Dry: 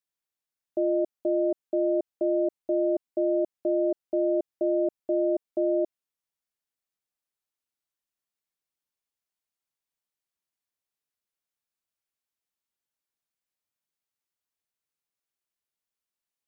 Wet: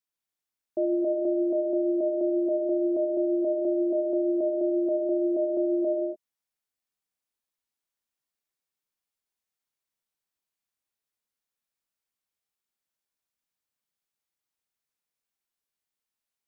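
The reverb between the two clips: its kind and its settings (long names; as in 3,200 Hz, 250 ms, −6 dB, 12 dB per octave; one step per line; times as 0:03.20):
reverb whose tail is shaped and stops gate 320 ms flat, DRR 1.5 dB
level −1.5 dB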